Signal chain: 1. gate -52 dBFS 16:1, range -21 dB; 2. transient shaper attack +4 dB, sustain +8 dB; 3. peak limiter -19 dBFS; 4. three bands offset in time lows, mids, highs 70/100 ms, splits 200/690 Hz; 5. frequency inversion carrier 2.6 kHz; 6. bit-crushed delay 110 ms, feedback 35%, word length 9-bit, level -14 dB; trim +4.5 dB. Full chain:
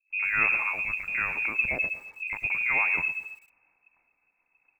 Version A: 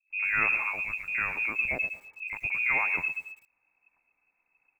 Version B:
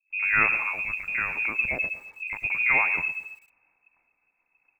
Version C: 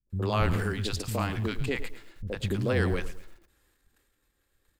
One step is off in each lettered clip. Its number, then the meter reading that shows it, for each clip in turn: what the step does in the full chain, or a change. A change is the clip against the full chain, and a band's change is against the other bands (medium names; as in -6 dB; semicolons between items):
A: 2, momentary loudness spread change +1 LU; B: 3, crest factor change +2.0 dB; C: 5, 2 kHz band -27.0 dB